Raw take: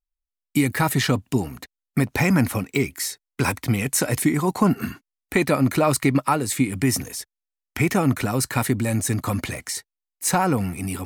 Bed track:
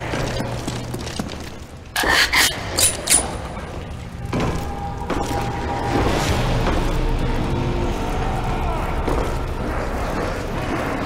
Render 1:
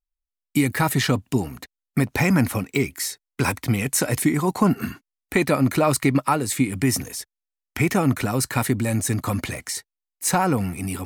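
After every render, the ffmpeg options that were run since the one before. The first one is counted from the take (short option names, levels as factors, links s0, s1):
-af anull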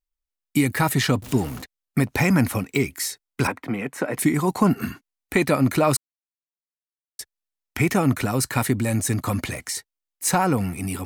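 -filter_complex "[0:a]asettb=1/sr,asplit=3[s0][s1][s2];[s0]atrim=end=1.224[s3];[s1]atrim=start=1.22:end=1.62,asetpts=PTS-STARTPTS,afade=t=in:d=0.004:c=qsin,afade=t=out:st=0.396:d=0.004:c=qsin,aeval=exprs='val(0)+0.5*0.0237*sgn(val(0))':c=same[s4];[s2]atrim=start=1.616[s5];[s3][s4]acrossfade=d=0.004:c1=hsin:c2=qsin[s6];[s6][s5]acrossfade=d=0.004:c1=qsin:c2=hsin,asettb=1/sr,asplit=3[s7][s8][s9];[s7]atrim=end=3.474[s10];[s8]atrim=start=3.47:end=4.19,asetpts=PTS-STARTPTS,afade=t=in:d=0.004:c=qsin,afade=t=out:st=0.716:d=0.004:c=qsin,acrossover=split=180 2400:gain=0.0891 1 0.112[s11][s12][s13];[s11][s12][s13]amix=inputs=3:normalize=0[s14];[s9]atrim=start=4.186[s15];[s10][s14]acrossfade=d=0.004:c1=hsin:c2=qsin[s16];[s16][s15]acrossfade=d=0.004:c1=qsin:c2=hsin,asplit=3[s17][s18][s19];[s17]atrim=end=5.97,asetpts=PTS-STARTPTS,afade=t=out:st=5.966:d=0.004:c=hsin[s20];[s18]atrim=start=5.97:end=7.19,asetpts=PTS-STARTPTS,volume=0[s21];[s19]atrim=start=7.19,asetpts=PTS-STARTPTS,afade=t=in:d=0.004:c=hsin[s22];[s20][s21][s22]concat=n=3:v=0:a=1"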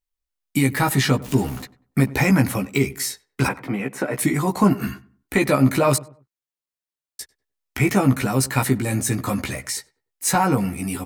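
-filter_complex "[0:a]asplit=2[s0][s1];[s1]adelay=15,volume=0.631[s2];[s0][s2]amix=inputs=2:normalize=0,asplit=2[s3][s4];[s4]adelay=97,lowpass=f=1300:p=1,volume=0.119,asplit=2[s5][s6];[s6]adelay=97,lowpass=f=1300:p=1,volume=0.35,asplit=2[s7][s8];[s8]adelay=97,lowpass=f=1300:p=1,volume=0.35[s9];[s3][s5][s7][s9]amix=inputs=4:normalize=0"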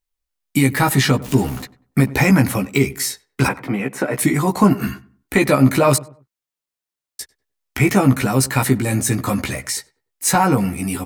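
-af "volume=1.5,alimiter=limit=0.794:level=0:latency=1"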